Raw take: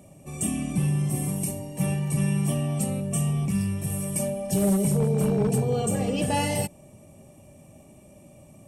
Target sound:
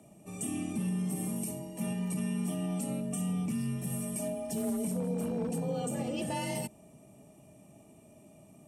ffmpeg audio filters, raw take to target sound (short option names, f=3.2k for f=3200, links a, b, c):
-af "alimiter=limit=-19.5dB:level=0:latency=1:release=70,afreqshift=35,volume=-6dB"